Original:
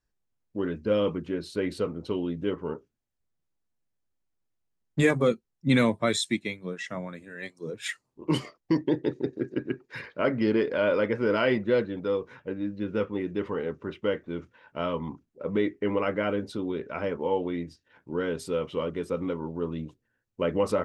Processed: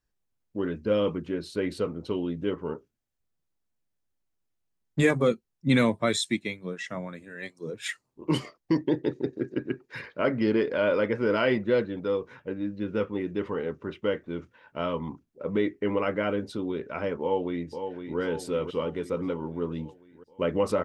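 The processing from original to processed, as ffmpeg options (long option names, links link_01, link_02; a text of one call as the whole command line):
ffmpeg -i in.wav -filter_complex "[0:a]asplit=2[link_01][link_02];[link_02]afade=type=in:start_time=17.21:duration=0.01,afade=type=out:start_time=18.19:duration=0.01,aecho=0:1:510|1020|1530|2040|2550|3060|3570|4080:0.421697|0.253018|0.151811|0.0910864|0.0546519|0.0327911|0.0196747|0.0118048[link_03];[link_01][link_03]amix=inputs=2:normalize=0" out.wav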